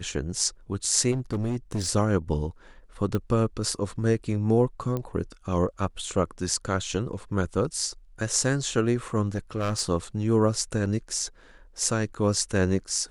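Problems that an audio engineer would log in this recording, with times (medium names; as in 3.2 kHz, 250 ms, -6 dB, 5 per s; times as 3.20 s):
1.11–1.89 s: clipped -23.5 dBFS
3.15 s: pop -16 dBFS
4.97 s: pop -18 dBFS
9.28–9.81 s: clipped -21.5 dBFS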